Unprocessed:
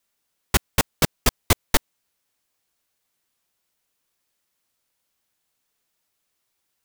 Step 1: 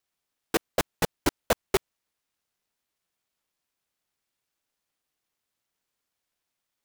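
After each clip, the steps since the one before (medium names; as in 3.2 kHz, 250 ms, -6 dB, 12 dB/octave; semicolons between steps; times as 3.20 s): square wave that keeps the level; ring modulator with a swept carrier 420 Hz, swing 40%, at 1.3 Hz; trim -8 dB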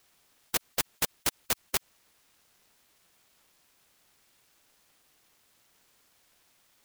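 spectrum-flattening compressor 4:1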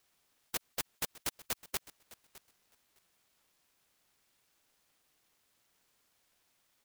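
feedback delay 609 ms, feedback 16%, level -19 dB; trim -8 dB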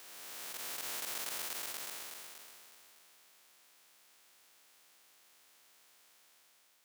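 spectral blur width 969 ms; high-pass 540 Hz 6 dB/octave; trim +11.5 dB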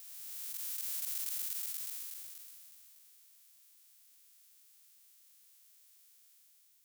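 pre-emphasis filter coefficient 0.97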